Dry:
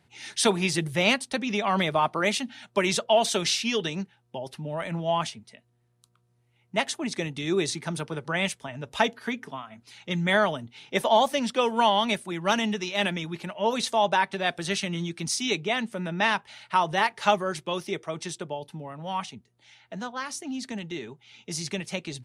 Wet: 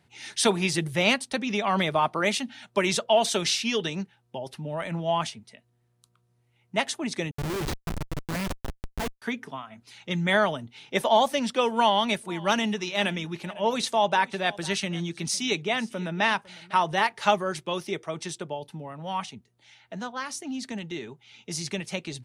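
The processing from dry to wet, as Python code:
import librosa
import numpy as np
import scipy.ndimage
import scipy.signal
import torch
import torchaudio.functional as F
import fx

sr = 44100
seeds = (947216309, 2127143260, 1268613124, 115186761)

y = fx.schmitt(x, sr, flips_db=-25.5, at=(7.31, 9.22))
y = fx.echo_single(y, sr, ms=503, db=-21.5, at=(11.73, 16.82))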